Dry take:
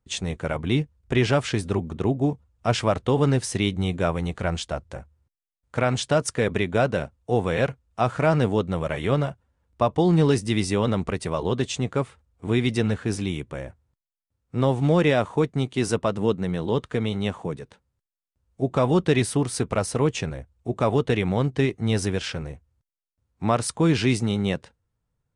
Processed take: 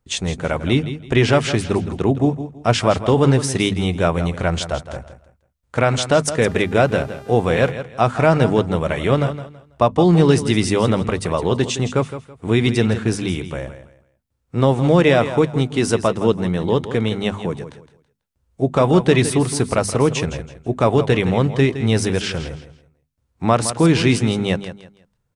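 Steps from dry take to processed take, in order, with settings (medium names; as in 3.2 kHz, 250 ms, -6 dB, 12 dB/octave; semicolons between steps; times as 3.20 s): hum notches 50/100/150/200/250 Hz; feedback delay 164 ms, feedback 26%, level -12 dB; 6.42–7.70 s: mains buzz 400 Hz, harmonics 35, -48 dBFS -7 dB/octave; trim +6 dB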